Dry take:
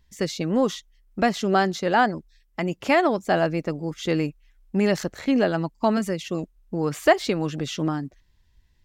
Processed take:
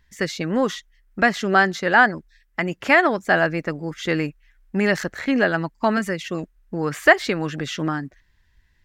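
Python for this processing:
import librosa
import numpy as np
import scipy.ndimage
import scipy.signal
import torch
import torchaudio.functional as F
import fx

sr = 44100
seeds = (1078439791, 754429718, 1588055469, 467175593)

y = fx.peak_eq(x, sr, hz=1700.0, db=11.0, octaves=0.92)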